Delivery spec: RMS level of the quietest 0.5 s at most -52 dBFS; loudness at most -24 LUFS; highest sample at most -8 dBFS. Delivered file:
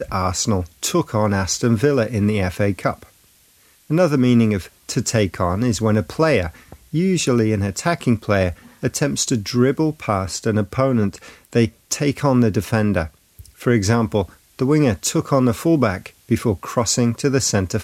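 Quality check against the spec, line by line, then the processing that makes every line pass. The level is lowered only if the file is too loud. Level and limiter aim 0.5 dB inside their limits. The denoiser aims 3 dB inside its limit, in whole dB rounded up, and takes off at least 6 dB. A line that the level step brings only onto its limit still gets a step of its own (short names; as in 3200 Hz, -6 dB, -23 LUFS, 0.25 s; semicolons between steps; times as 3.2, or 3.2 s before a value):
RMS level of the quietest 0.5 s -54 dBFS: OK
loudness -19.5 LUFS: fail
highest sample -3.0 dBFS: fail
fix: gain -5 dB; limiter -8.5 dBFS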